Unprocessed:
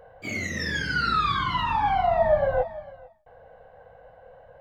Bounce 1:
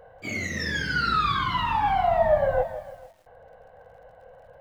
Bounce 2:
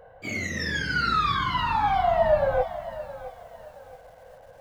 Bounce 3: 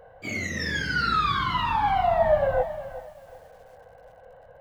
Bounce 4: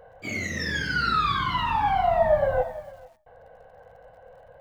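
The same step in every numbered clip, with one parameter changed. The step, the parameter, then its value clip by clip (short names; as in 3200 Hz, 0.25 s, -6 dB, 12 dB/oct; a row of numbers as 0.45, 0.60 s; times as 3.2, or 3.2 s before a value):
lo-fi delay, time: 159, 668, 375, 92 ms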